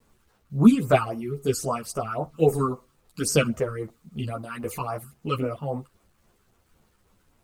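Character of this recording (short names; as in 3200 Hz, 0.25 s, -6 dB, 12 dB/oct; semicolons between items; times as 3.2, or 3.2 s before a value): phasing stages 12, 3.7 Hz, lowest notch 610–4000 Hz; tremolo triangle 2.4 Hz, depth 40%; a quantiser's noise floor 12-bit, dither none; a shimmering, thickened sound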